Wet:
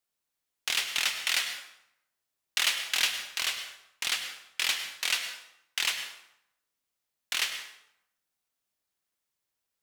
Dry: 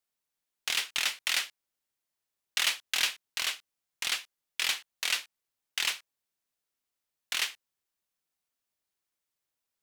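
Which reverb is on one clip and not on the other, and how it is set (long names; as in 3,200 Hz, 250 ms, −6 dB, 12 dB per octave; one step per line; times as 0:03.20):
dense smooth reverb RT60 0.79 s, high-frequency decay 0.75×, pre-delay 90 ms, DRR 7.5 dB
level +1 dB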